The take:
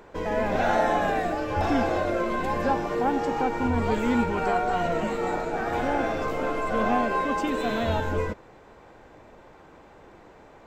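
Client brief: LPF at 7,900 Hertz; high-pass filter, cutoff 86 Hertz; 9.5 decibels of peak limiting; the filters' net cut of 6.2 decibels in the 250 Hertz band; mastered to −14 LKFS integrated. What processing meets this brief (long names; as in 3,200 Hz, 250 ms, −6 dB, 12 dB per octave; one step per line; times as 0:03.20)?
high-pass filter 86 Hz
low-pass filter 7,900 Hz
parametric band 250 Hz −7.5 dB
level +16 dB
brickwall limiter −5 dBFS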